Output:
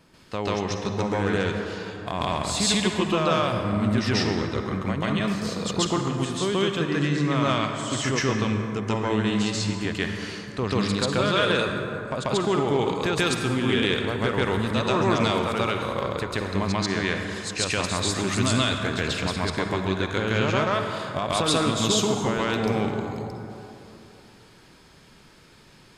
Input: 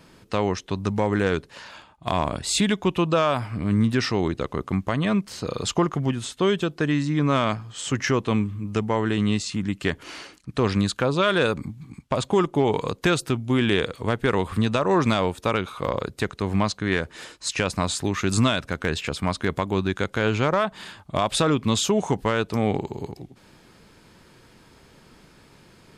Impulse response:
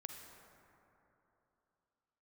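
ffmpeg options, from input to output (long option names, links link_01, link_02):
-filter_complex "[0:a]asplit=2[link_01][link_02];[link_02]equalizer=frequency=4300:width_type=o:width=2.3:gain=6.5[link_03];[1:a]atrim=start_sample=2205,adelay=138[link_04];[link_03][link_04]afir=irnorm=-1:irlink=0,volume=6.5dB[link_05];[link_01][link_05]amix=inputs=2:normalize=0,volume=-6dB"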